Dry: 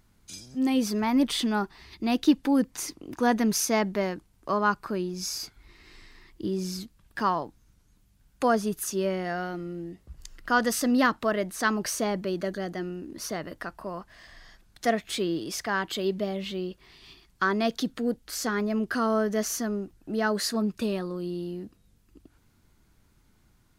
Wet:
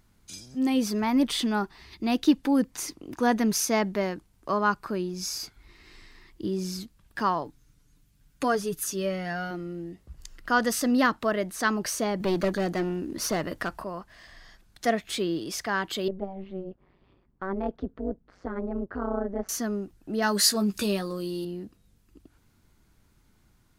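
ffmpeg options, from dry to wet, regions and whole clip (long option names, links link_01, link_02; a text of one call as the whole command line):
ffmpeg -i in.wav -filter_complex "[0:a]asettb=1/sr,asplit=3[link_01][link_02][link_03];[link_01]atrim=end=7.444[link_04];[link_02]atrim=start=7.44:end=9.51,asetpts=PTS-STARTPTS,afade=type=in:duration=0.004:curve=qsin,afade=type=out:start_time=2.066:duration=0.004:curve=qsin,equalizer=frequency=760:width=1.2:gain=-5.5,aecho=1:1:6.9:0.59,atrim=end_sample=91287[link_05];[link_03]atrim=start=9.506[link_06];[link_04][link_05]acrossfade=duration=0.004:curve1=hsin:curve2=qsin[link_07];[link_07][link_06]acrossfade=duration=0.004:curve1=qsin:curve2=hsin,asettb=1/sr,asplit=3[link_08][link_09][link_10];[link_08]atrim=end=12.204[link_11];[link_09]atrim=start=12.2:end=13.84,asetpts=PTS-STARTPTS,afade=type=in:duration=0.004:curve=qsin,afade=type=out:start_time=1.636:duration=0.004:curve=qsin,acontrast=53,aeval=exprs='clip(val(0),-1,0.0562)':channel_layout=same[link_12];[link_10]atrim=start=13.836[link_13];[link_11][link_12]acrossfade=duration=0.004:curve1=hsin:curve2=qsin[link_14];[link_14][link_13]acrossfade=duration=0.004:curve1=qsin:curve2=hsin,asettb=1/sr,asplit=3[link_15][link_16][link_17];[link_15]atrim=end=16.084[link_18];[link_16]atrim=start=16.08:end=19.49,asetpts=PTS-STARTPTS,afade=type=in:duration=0.004:curve=qsin,afade=type=out:start_time=3.406:duration=0.004:curve=qsin,lowpass=1000,tremolo=f=190:d=0.919[link_19];[link_17]atrim=start=19.486[link_20];[link_18][link_19]acrossfade=duration=0.004:curve1=hsin:curve2=qsin[link_21];[link_21][link_20]acrossfade=duration=0.004:curve1=qsin:curve2=hsin,asettb=1/sr,asplit=3[link_22][link_23][link_24];[link_22]atrim=end=20.224[link_25];[link_23]atrim=start=20.22:end=21.45,asetpts=PTS-STARTPTS,afade=type=in:duration=0.004:curve=qsin,afade=type=out:start_time=1.226:duration=0.004:curve=qsin,highshelf=frequency=3500:gain=11.5,acompressor=mode=upward:threshold=-28dB:ratio=2.5:attack=3.2:release=140:knee=2.83:detection=peak,asplit=2[link_26][link_27];[link_27]adelay=15,volume=-7.5dB[link_28];[link_26][link_28]amix=inputs=2:normalize=0,atrim=end_sample=54243[link_29];[link_24]atrim=start=21.446[link_30];[link_25][link_29]acrossfade=duration=0.004:curve1=hsin:curve2=qsin[link_31];[link_31][link_30]acrossfade=duration=0.004:curve1=qsin:curve2=hsin" out.wav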